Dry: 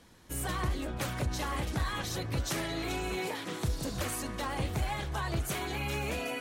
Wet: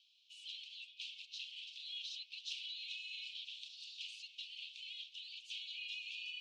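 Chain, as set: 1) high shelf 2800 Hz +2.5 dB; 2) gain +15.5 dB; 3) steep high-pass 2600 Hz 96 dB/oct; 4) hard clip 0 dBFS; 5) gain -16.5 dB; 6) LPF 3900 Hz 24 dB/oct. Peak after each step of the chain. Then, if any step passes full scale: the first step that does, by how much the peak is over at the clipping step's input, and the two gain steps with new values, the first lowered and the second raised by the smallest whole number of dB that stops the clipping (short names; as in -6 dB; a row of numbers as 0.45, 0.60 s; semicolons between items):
-22.0, -6.5, -5.5, -5.5, -22.0, -29.5 dBFS; no overload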